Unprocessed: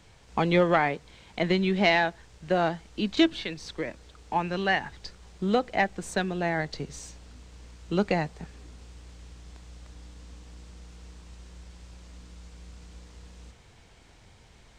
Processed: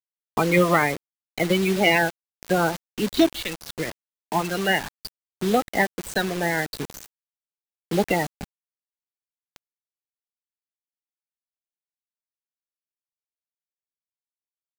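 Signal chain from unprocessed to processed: bin magnitudes rounded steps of 30 dB; bit-crush 6-bit; gain +4 dB

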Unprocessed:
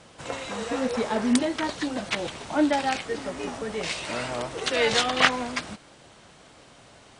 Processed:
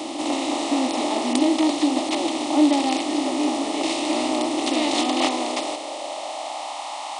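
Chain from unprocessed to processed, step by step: per-bin compression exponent 0.4; high-pass sweep 310 Hz -> 870 Hz, 5.1–6.83; fixed phaser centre 310 Hz, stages 8; gain -3 dB

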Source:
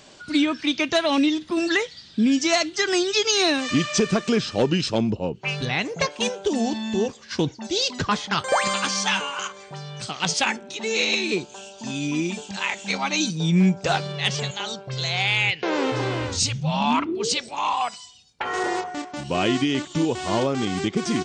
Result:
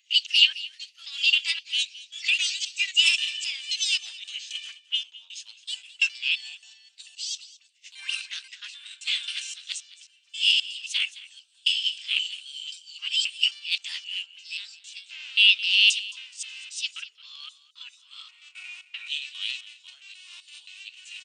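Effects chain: slices in reverse order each 0.265 s, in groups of 3; formant shift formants +4 st; ladder high-pass 2600 Hz, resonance 75%; on a send: echo 0.218 s -14 dB; on the sum: three-band expander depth 70%; gain +1.5 dB

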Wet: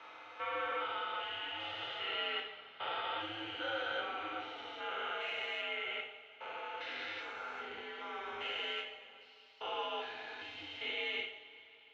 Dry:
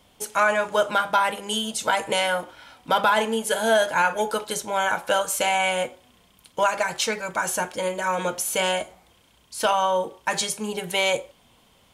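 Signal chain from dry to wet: stepped spectrum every 0.4 s; differentiator; mistuned SSB -120 Hz 190–3400 Hz; two-slope reverb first 0.59 s, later 3.5 s, from -18 dB, DRR -1.5 dB

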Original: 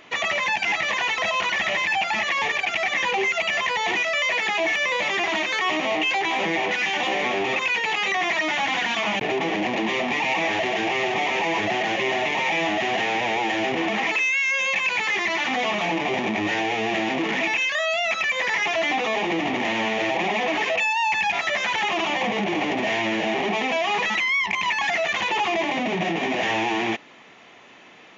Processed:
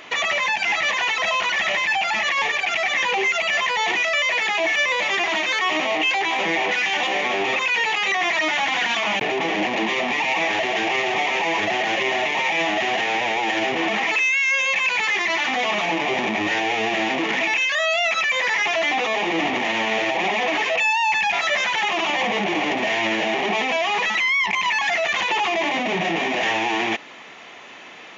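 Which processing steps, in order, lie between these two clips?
low shelf 350 Hz -7.5 dB; limiter -21.5 dBFS, peak gain reduction 8 dB; gain +8 dB

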